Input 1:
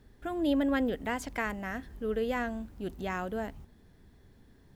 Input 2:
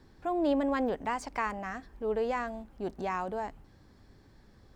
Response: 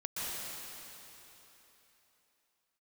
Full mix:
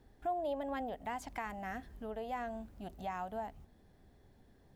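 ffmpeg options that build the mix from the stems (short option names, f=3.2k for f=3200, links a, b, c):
-filter_complex "[0:a]volume=-5.5dB[a];[1:a]highpass=320,lowpass=f=710:t=q:w=3.6,volume=-12dB,asplit=2[b][c];[c]apad=whole_len=209734[d];[a][d]sidechaincompress=threshold=-39dB:ratio=8:attack=8.2:release=494[e];[e][b]amix=inputs=2:normalize=0"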